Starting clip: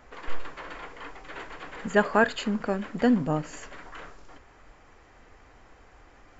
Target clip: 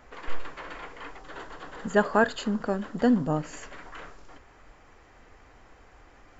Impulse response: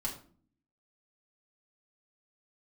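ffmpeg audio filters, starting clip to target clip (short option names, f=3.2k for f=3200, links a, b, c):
-filter_complex "[0:a]asettb=1/sr,asplit=3[a][b][c];[a]atrim=end=1.184[d];[b]atrim=start=1.18:end=3.41,asetpts=PTS-STARTPTS,afade=t=in:d=0.004:c=qsin,afade=t=out:st=2.226:d=0.004:c=qsin,equalizer=f=2.3k:w=3.1:g=-10[e];[c]atrim=start=3.406[f];[d][e]acrossfade=d=0.004:c1=hsin:c2=qsin[g];[g][f]acrossfade=d=0.004:c1=qsin:c2=hsin"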